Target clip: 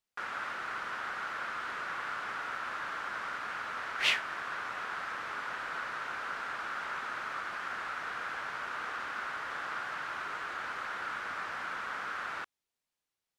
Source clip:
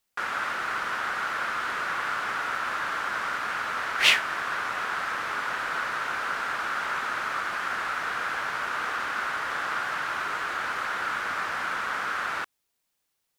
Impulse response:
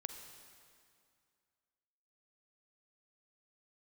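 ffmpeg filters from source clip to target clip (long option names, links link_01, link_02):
-af "highshelf=frequency=10000:gain=-10.5,volume=-8dB"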